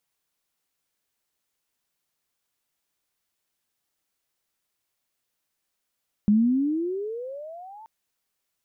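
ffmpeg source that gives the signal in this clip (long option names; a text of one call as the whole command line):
ffmpeg -f lavfi -i "aevalsrc='pow(10,(-14.5-27.5*t/1.58)/20)*sin(2*PI*202*1.58/(26*log(2)/12)*(exp(26*log(2)/12*t/1.58)-1))':duration=1.58:sample_rate=44100" out.wav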